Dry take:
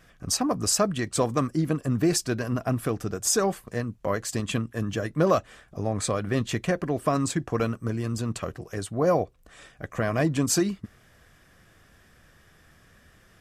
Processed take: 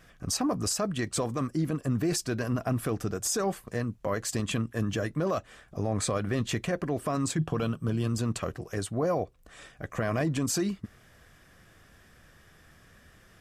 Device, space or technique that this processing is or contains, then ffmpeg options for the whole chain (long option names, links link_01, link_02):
stacked limiters: -filter_complex "[0:a]asplit=3[link_01][link_02][link_03];[link_01]afade=type=out:start_time=7.38:duration=0.02[link_04];[link_02]equalizer=frequency=160:width_type=o:width=0.33:gain=12,equalizer=frequency=2000:width_type=o:width=0.33:gain=-8,equalizer=frequency=3150:width_type=o:width=0.33:gain=11,equalizer=frequency=6300:width_type=o:width=0.33:gain=-6,afade=type=in:start_time=7.38:duration=0.02,afade=type=out:start_time=8.07:duration=0.02[link_05];[link_03]afade=type=in:start_time=8.07:duration=0.02[link_06];[link_04][link_05][link_06]amix=inputs=3:normalize=0,alimiter=limit=-15dB:level=0:latency=1:release=417,alimiter=limit=-20dB:level=0:latency=1:release=13"